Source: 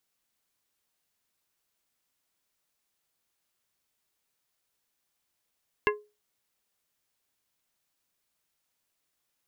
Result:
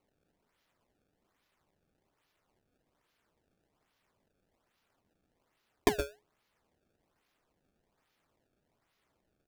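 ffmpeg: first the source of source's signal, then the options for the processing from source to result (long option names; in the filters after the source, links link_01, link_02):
-f lavfi -i "aevalsrc='0.0944*pow(10,-3*t/0.28)*sin(2*PI*419*t)+0.0841*pow(10,-3*t/0.147)*sin(2*PI*1047.5*t)+0.075*pow(10,-3*t/0.106)*sin(2*PI*1676*t)+0.0668*pow(10,-3*t/0.091)*sin(2*PI*2095*t)+0.0596*pow(10,-3*t/0.076)*sin(2*PI*2723.5*t)':duration=0.89:sample_rate=44100"
-af "aecho=1:1:115:0.596,acrusher=samples=25:mix=1:aa=0.000001:lfo=1:lforange=40:lforate=1.2"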